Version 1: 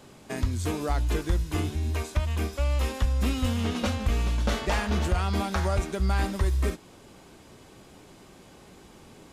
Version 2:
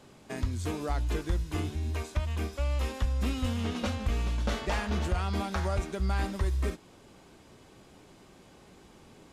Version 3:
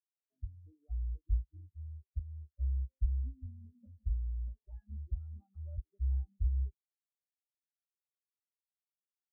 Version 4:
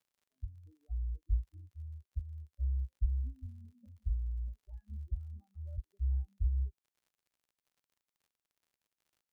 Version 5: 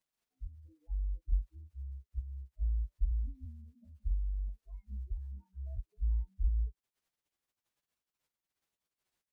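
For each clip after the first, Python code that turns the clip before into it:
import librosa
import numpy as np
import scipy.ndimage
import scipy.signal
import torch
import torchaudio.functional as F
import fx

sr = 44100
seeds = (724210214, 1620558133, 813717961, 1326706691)

y1 = fx.high_shelf(x, sr, hz=11000.0, db=-6.5)
y1 = y1 * 10.0 ** (-4.0 / 20.0)
y2 = fx.spectral_expand(y1, sr, expansion=4.0)
y2 = y2 * 10.0 ** (-2.5 / 20.0)
y3 = fx.dmg_crackle(y2, sr, seeds[0], per_s=59.0, level_db=-61.0)
y4 = fx.partial_stretch(y3, sr, pct=113)
y4 = y4 * 10.0 ** (2.0 / 20.0)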